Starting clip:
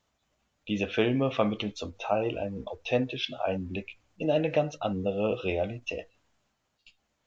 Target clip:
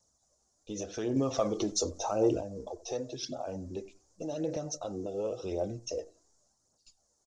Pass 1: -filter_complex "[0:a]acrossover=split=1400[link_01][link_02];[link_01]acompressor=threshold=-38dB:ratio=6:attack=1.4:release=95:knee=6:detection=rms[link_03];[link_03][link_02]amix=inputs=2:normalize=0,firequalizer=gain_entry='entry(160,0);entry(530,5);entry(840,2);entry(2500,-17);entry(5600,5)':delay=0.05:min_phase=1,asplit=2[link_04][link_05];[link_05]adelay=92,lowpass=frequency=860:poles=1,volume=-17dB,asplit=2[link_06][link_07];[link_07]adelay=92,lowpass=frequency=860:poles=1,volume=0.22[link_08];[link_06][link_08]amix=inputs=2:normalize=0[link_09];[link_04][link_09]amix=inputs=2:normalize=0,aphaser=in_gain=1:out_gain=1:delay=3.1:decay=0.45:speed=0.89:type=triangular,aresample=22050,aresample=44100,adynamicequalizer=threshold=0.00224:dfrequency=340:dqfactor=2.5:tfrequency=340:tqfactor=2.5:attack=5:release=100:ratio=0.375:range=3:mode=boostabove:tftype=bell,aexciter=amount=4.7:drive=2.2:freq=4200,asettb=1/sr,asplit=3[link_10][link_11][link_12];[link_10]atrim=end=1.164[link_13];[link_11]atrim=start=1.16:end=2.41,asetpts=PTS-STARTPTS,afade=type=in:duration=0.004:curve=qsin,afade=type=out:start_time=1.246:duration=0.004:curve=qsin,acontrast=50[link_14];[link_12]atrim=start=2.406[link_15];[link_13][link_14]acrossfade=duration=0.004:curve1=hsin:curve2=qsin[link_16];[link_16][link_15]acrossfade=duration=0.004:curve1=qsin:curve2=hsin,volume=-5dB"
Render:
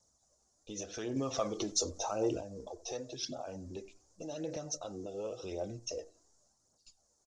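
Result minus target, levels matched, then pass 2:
downward compressor: peak gain reduction +6 dB
-filter_complex "[0:a]acrossover=split=1400[link_01][link_02];[link_01]acompressor=threshold=-30.5dB:ratio=6:attack=1.4:release=95:knee=6:detection=rms[link_03];[link_03][link_02]amix=inputs=2:normalize=0,firequalizer=gain_entry='entry(160,0);entry(530,5);entry(840,2);entry(2500,-17);entry(5600,5)':delay=0.05:min_phase=1,asplit=2[link_04][link_05];[link_05]adelay=92,lowpass=frequency=860:poles=1,volume=-17dB,asplit=2[link_06][link_07];[link_07]adelay=92,lowpass=frequency=860:poles=1,volume=0.22[link_08];[link_06][link_08]amix=inputs=2:normalize=0[link_09];[link_04][link_09]amix=inputs=2:normalize=0,aphaser=in_gain=1:out_gain=1:delay=3.1:decay=0.45:speed=0.89:type=triangular,aresample=22050,aresample=44100,adynamicequalizer=threshold=0.00224:dfrequency=340:dqfactor=2.5:tfrequency=340:tqfactor=2.5:attack=5:release=100:ratio=0.375:range=3:mode=boostabove:tftype=bell,aexciter=amount=4.7:drive=2.2:freq=4200,asettb=1/sr,asplit=3[link_10][link_11][link_12];[link_10]atrim=end=1.164[link_13];[link_11]atrim=start=1.16:end=2.41,asetpts=PTS-STARTPTS,afade=type=in:duration=0.004:curve=qsin,afade=type=out:start_time=1.246:duration=0.004:curve=qsin,acontrast=50[link_14];[link_12]atrim=start=2.406[link_15];[link_13][link_14]acrossfade=duration=0.004:curve1=hsin:curve2=qsin[link_16];[link_16][link_15]acrossfade=duration=0.004:curve1=qsin:curve2=hsin,volume=-5dB"

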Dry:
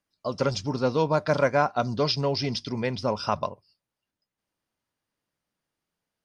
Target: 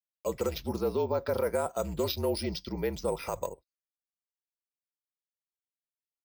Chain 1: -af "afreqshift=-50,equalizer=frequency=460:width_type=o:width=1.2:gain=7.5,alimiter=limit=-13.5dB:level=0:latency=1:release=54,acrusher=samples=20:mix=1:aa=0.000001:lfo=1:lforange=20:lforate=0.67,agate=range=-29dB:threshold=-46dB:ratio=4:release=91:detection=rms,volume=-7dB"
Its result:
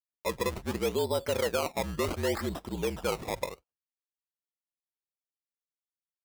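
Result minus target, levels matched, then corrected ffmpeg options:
sample-and-hold swept by an LFO: distortion +12 dB
-af "afreqshift=-50,equalizer=frequency=460:width_type=o:width=1.2:gain=7.5,alimiter=limit=-13.5dB:level=0:latency=1:release=54,acrusher=samples=4:mix=1:aa=0.000001:lfo=1:lforange=4:lforate=0.67,agate=range=-29dB:threshold=-46dB:ratio=4:release=91:detection=rms,volume=-7dB"

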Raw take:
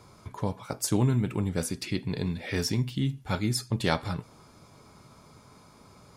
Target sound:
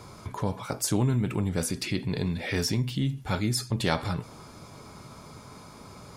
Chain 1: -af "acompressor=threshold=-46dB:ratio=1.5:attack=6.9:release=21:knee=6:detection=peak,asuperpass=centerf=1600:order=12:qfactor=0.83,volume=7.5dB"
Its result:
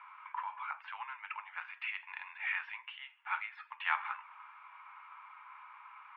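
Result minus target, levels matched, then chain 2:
2,000 Hz band +11.0 dB
-af "acompressor=threshold=-46dB:ratio=1.5:attack=6.9:release=21:knee=6:detection=peak,volume=7.5dB"

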